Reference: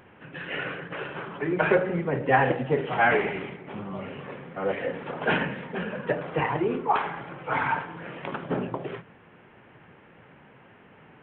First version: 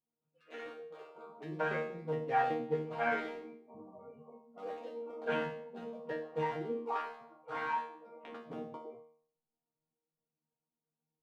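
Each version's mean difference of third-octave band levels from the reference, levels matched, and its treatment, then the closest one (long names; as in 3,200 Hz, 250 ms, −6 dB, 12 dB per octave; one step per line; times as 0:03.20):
10.0 dB: adaptive Wiener filter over 25 samples
dynamic equaliser 140 Hz, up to −4 dB, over −41 dBFS, Q 1.2
noise reduction from a noise print of the clip's start 29 dB
resonators tuned to a chord D#3 fifth, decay 0.54 s
level +6.5 dB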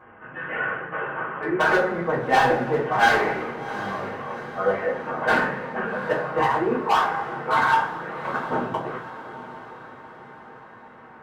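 6.0 dB: drawn EQ curve 520 Hz 0 dB, 1,200 Hz +10 dB, 3,800 Hz −13 dB
hard clipping −16.5 dBFS, distortion −10 dB
feedback delay with all-pass diffusion 773 ms, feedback 50%, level −13.5 dB
coupled-rooms reverb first 0.27 s, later 1.9 s, from −22 dB, DRR −9 dB
level −7.5 dB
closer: second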